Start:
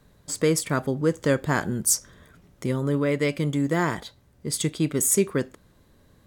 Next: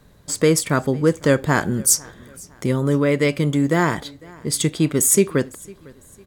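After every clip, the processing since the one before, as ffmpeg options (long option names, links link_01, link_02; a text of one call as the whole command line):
ffmpeg -i in.wav -af "aecho=1:1:503|1006:0.0631|0.024,volume=5.5dB" out.wav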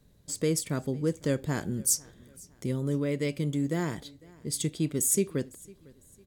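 ffmpeg -i in.wav -af "equalizer=frequency=1200:width_type=o:width=1.9:gain=-10,volume=-9dB" out.wav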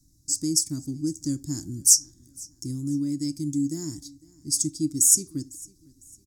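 ffmpeg -i in.wav -af "firequalizer=gain_entry='entry(120,0);entry(210,-10);entry(300,8);entry(440,-27);entry(770,-18);entry(3000,-23);entry(5300,14);entry(9300,7);entry(16000,2)':delay=0.05:min_phase=1" out.wav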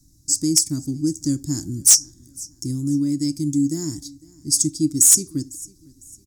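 ffmpeg -i in.wav -af "asoftclip=type=hard:threshold=-12dB,volume=6dB" out.wav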